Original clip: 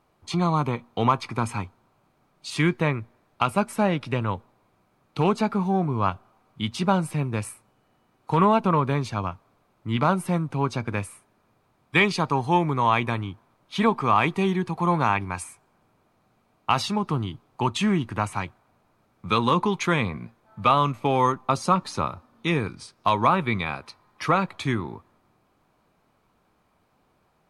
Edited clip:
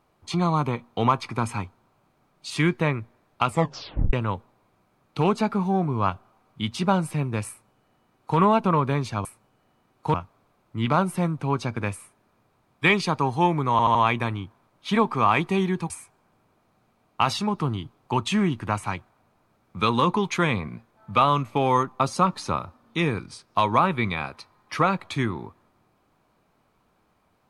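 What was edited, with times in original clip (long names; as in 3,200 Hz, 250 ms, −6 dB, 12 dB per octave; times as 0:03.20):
0:03.48: tape stop 0.65 s
0:07.49–0:08.38: duplicate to 0:09.25
0:12.82: stutter 0.08 s, 4 plays
0:14.77–0:15.39: remove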